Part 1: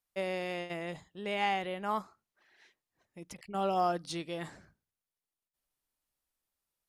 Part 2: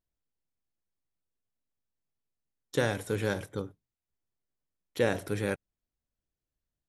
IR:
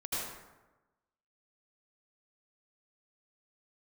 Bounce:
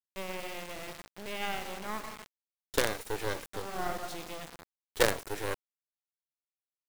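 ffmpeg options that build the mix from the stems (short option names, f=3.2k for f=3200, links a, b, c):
-filter_complex "[0:a]acompressor=mode=upward:threshold=-43dB:ratio=2.5,volume=-3.5dB,asplit=2[a][b];[b]volume=-8.5dB[c];[1:a]highpass=f=330:w=0.5412,highpass=f=330:w=1.3066,volume=2dB,asplit=2[d][e];[e]apad=whole_len=303771[f];[a][f]sidechaincompress=threshold=-47dB:ratio=8:attack=16:release=188[g];[2:a]atrim=start_sample=2205[h];[c][h]afir=irnorm=-1:irlink=0[i];[g][d][i]amix=inputs=3:normalize=0,acrusher=bits=4:dc=4:mix=0:aa=0.000001"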